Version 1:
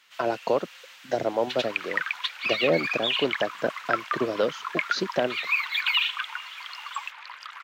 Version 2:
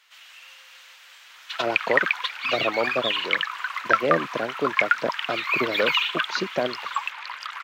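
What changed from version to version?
speech: entry +1.40 s; second sound +6.5 dB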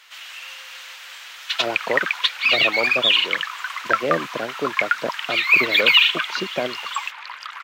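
first sound +10.0 dB

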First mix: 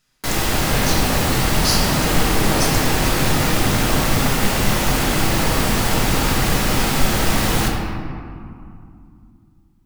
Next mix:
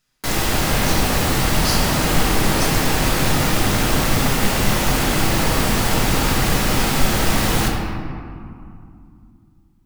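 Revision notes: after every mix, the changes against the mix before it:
speech -4.0 dB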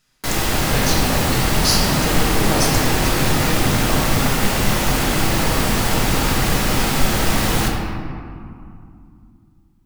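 speech +6.0 dB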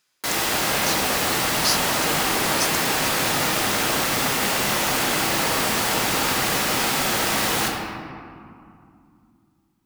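speech: send off; master: add HPF 500 Hz 6 dB/oct

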